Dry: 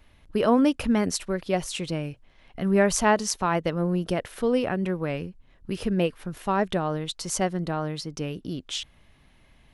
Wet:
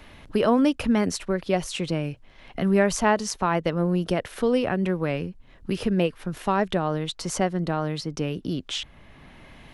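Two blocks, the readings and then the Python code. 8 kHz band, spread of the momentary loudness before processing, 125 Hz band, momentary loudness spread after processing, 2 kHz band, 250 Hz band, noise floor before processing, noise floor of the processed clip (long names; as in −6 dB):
−2.5 dB, 12 LU, +2.0 dB, 10 LU, +1.0 dB, +1.5 dB, −58 dBFS, −51 dBFS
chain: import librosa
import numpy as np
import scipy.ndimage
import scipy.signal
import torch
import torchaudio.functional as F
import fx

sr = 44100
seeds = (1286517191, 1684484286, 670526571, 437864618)

y = fx.high_shelf(x, sr, hz=10000.0, db=-7.0)
y = fx.band_squash(y, sr, depth_pct=40)
y = y * librosa.db_to_amplitude(1.5)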